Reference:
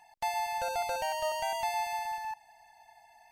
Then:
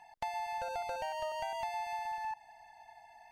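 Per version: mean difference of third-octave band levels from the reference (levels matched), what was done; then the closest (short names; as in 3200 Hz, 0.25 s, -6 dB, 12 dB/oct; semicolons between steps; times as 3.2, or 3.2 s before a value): 3.0 dB: LPF 3100 Hz 6 dB/oct; compressor, threshold -38 dBFS, peak gain reduction 9 dB; gain +2.5 dB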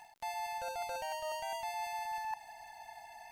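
4.5 dB: reverse; compressor 10:1, threshold -44 dBFS, peak gain reduction 15.5 dB; reverse; crackle 78/s -59 dBFS; gain +7 dB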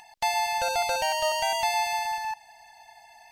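1.5 dB: bell 4300 Hz +6.5 dB 2.1 oct; upward compressor, threshold -55 dBFS; gain +5 dB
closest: third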